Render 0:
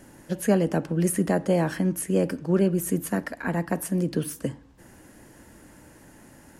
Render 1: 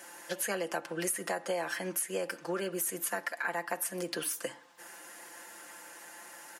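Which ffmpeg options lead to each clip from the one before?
-af "highpass=820,aecho=1:1:5.8:0.65,acompressor=threshold=0.0141:ratio=4,volume=1.88"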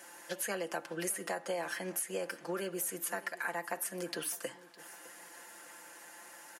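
-af "aecho=1:1:609|1218|1827:0.106|0.0381|0.0137,volume=0.708"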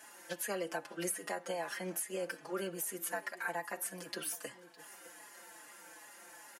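-filter_complex "[0:a]asplit=2[s0][s1];[s1]adelay=4.2,afreqshift=-2.5[s2];[s0][s2]amix=inputs=2:normalize=1,volume=1.12"

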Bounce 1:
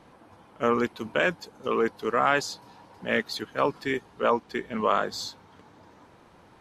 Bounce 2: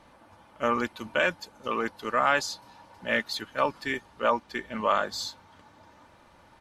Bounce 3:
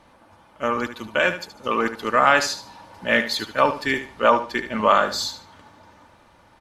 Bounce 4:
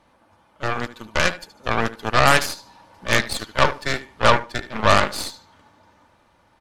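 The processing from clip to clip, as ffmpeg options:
-af "equalizer=f=320:t=o:w=1.2:g=-7.5,aecho=1:1:3.4:0.39"
-filter_complex "[0:a]dynaudnorm=f=200:g=13:m=2.11,asplit=2[s0][s1];[s1]aecho=0:1:74|148|222:0.282|0.0733|0.0191[s2];[s0][s2]amix=inputs=2:normalize=0,volume=1.26"
-af "aeval=exprs='0.891*(cos(1*acos(clip(val(0)/0.891,-1,1)))-cos(1*PI/2))+0.0562*(cos(7*acos(clip(val(0)/0.891,-1,1)))-cos(7*PI/2))+0.178*(cos(8*acos(clip(val(0)/0.891,-1,1)))-cos(8*PI/2))':c=same"

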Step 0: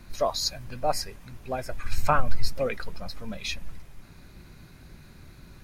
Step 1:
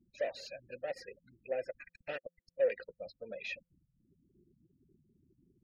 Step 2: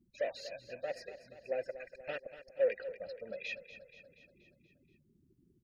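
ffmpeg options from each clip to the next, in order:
-filter_complex "[0:a]aeval=exprs='(tanh(31.6*val(0)+0.25)-tanh(0.25))/31.6':c=same,afftfilt=real='re*gte(hypot(re,im),0.00794)':imag='im*gte(hypot(re,im),0.00794)':win_size=1024:overlap=0.75,asplit=3[s0][s1][s2];[s0]bandpass=f=530:t=q:w=8,volume=1[s3];[s1]bandpass=f=1840:t=q:w=8,volume=0.501[s4];[s2]bandpass=f=2480:t=q:w=8,volume=0.355[s5];[s3][s4][s5]amix=inputs=3:normalize=0,volume=2.51"
-af "aecho=1:1:239|478|717|956|1195|1434:0.224|0.132|0.0779|0.046|0.0271|0.016"

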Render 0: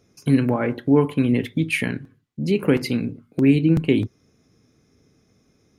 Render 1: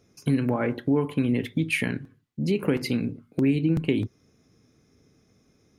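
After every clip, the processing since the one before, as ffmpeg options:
-af "acompressor=threshold=0.112:ratio=2.5,volume=0.841"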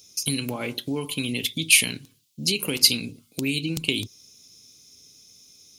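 -af "equalizer=f=1100:w=1.5:g=2,aexciter=amount=14:drive=7:freq=2700,volume=0.501"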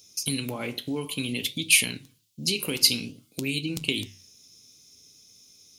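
-af "flanger=delay=8.7:depth=9.4:regen=-79:speed=0.56:shape=sinusoidal,volume=1.26"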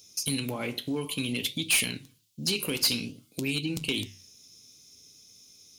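-af "asoftclip=type=tanh:threshold=0.119"

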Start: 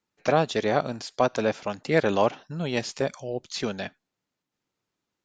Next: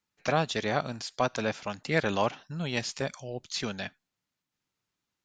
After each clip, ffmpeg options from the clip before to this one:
-af "equalizer=f=430:t=o:w=2.1:g=-7.5"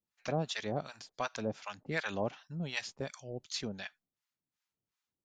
-filter_complex "[0:a]acrossover=split=750[s0][s1];[s0]aeval=exprs='val(0)*(1-1/2+1/2*cos(2*PI*2.7*n/s))':c=same[s2];[s1]aeval=exprs='val(0)*(1-1/2-1/2*cos(2*PI*2.7*n/s))':c=same[s3];[s2][s3]amix=inputs=2:normalize=0,volume=0.708"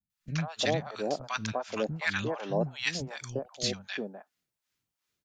-filter_complex "[0:a]acrossover=split=220|950[s0][s1][s2];[s2]adelay=100[s3];[s1]adelay=350[s4];[s0][s4][s3]amix=inputs=3:normalize=0,volume=2.24"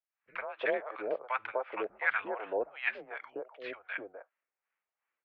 -af "highpass=f=600:t=q:w=0.5412,highpass=f=600:t=q:w=1.307,lowpass=f=2500:t=q:w=0.5176,lowpass=f=2500:t=q:w=0.7071,lowpass=f=2500:t=q:w=1.932,afreqshift=-110,volume=1.19"

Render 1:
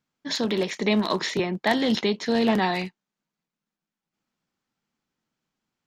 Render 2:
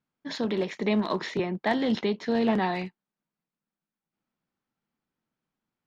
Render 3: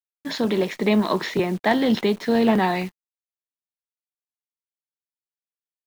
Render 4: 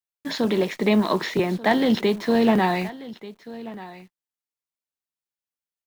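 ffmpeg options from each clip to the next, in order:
-af "aemphasis=mode=reproduction:type=75kf,volume=0.75"
-af "acrusher=bits=9:dc=4:mix=0:aa=0.000001,volume=2"
-af "aecho=1:1:1186:0.133"

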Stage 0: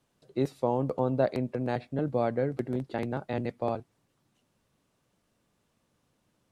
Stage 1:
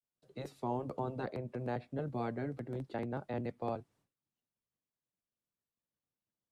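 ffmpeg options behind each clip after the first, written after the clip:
-filter_complex "[0:a]agate=range=0.0224:threshold=0.001:ratio=3:detection=peak,afftfilt=real='re*lt(hypot(re,im),0.282)':imag='im*lt(hypot(re,im),0.282)':win_size=1024:overlap=0.75,acrossover=split=110|470|1900[s0][s1][s2][s3];[s3]alimiter=level_in=5.31:limit=0.0631:level=0:latency=1:release=219,volume=0.188[s4];[s0][s1][s2][s4]amix=inputs=4:normalize=0,volume=0.501"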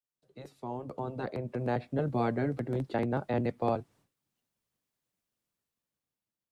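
-af "dynaudnorm=f=380:g=7:m=3.98,volume=0.631"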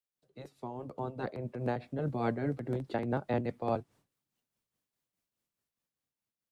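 -af "tremolo=f=4.8:d=0.51"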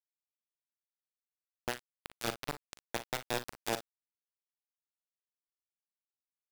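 -af "lowpass=f=3500:t=q:w=11,acrusher=bits=3:mix=0:aa=0.000001,aecho=1:1:41|57:0.251|0.168,volume=0.596"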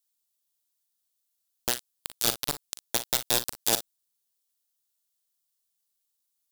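-af "aexciter=amount=3.8:drive=4.6:freq=3200,volume=1.5"

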